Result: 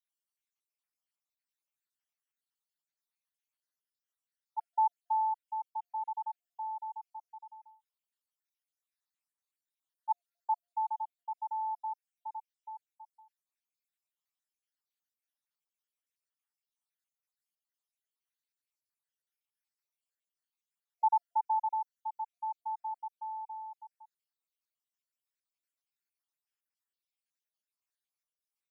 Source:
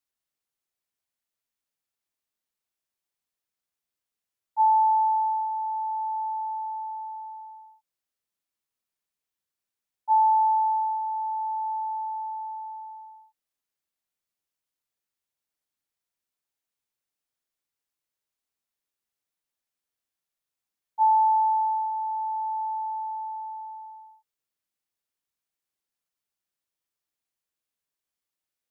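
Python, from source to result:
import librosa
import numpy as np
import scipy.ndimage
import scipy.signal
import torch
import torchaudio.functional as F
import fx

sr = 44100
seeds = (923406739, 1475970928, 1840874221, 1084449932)

y = fx.spec_dropout(x, sr, seeds[0], share_pct=65)
y = scipy.signal.sosfilt(scipy.signal.butter(2, 860.0, 'highpass', fs=sr, output='sos'), y)
y = F.gain(torch.from_numpy(y), -2.0).numpy()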